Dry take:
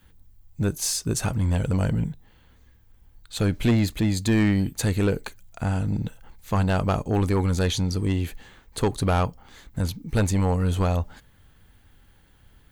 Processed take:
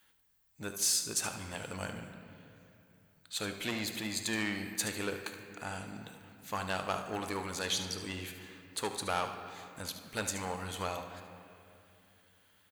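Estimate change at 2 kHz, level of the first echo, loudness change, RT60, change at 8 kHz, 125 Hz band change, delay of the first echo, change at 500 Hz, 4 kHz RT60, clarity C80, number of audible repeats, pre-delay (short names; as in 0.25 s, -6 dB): -4.0 dB, -11.5 dB, -11.0 dB, 2.8 s, -2.5 dB, -23.0 dB, 74 ms, -12.0 dB, 1.9 s, 8.5 dB, 1, 3 ms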